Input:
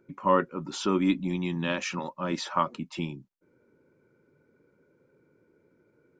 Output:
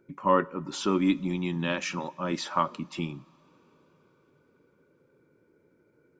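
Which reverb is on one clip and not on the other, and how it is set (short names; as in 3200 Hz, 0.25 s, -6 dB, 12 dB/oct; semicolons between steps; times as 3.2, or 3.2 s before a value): two-slope reverb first 0.51 s, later 4.8 s, from -17 dB, DRR 18.5 dB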